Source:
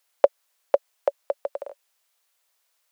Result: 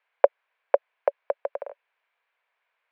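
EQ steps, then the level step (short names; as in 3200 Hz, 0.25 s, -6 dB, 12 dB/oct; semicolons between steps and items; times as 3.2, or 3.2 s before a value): speaker cabinet 330–3000 Hz, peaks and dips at 460 Hz +6 dB, 690 Hz +4 dB, 1000 Hz +7 dB, 1600 Hz +8 dB, 2300 Hz +8 dB; -3.5 dB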